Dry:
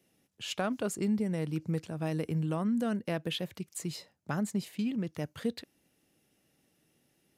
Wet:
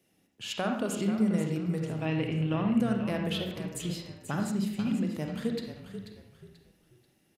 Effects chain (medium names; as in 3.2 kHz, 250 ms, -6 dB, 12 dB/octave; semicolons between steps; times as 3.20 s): 2.00–2.74 s: resonant low-pass 2.9 kHz, resonance Q 3; frequency-shifting echo 486 ms, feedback 31%, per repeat -34 Hz, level -10 dB; on a send at -2.5 dB: reverberation RT60 0.75 s, pre-delay 37 ms